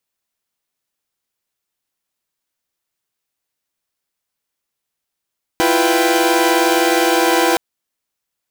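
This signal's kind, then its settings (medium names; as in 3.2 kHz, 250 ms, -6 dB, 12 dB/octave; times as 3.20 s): chord E4/F4/B4/G5 saw, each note -15.5 dBFS 1.97 s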